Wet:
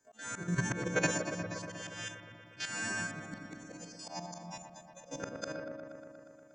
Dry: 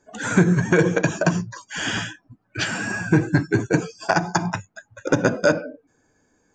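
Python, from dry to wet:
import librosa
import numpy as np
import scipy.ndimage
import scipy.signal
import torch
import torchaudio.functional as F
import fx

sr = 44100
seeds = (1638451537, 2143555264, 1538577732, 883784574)

y = fx.freq_snap(x, sr, grid_st=2)
y = fx.low_shelf(y, sr, hz=79.0, db=-2.5)
y = fx.level_steps(y, sr, step_db=10)
y = fx.auto_swell(y, sr, attack_ms=285.0)
y = fx.fixed_phaser(y, sr, hz=390.0, stages=6, at=(3.07, 5.2))
y = fx.echo_wet_lowpass(y, sr, ms=119, feedback_pct=77, hz=2200.0, wet_db=-7.0)
y = F.gain(torch.from_numpy(y), -6.0).numpy()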